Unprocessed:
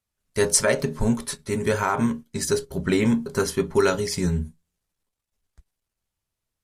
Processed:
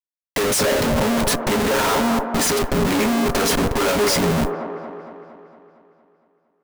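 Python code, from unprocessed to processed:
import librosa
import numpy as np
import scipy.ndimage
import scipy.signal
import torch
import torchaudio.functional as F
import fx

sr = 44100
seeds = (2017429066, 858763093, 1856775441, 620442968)

p1 = scipy.signal.sosfilt(scipy.signal.butter(4, 210.0, 'highpass', fs=sr, output='sos'), x)
p2 = fx.over_compress(p1, sr, threshold_db=-23.0, ratio=-0.5)
p3 = p1 + (p2 * 10.0 ** (0.5 / 20.0))
p4 = fx.notch_comb(p3, sr, f0_hz=380.0)
p5 = fx.schmitt(p4, sr, flips_db=-30.5)
p6 = fx.mod_noise(p5, sr, seeds[0], snr_db=25)
p7 = fx.echo_wet_bandpass(p6, sr, ms=230, feedback_pct=58, hz=620.0, wet_db=-3.5)
y = p7 * 10.0 ** (4.0 / 20.0)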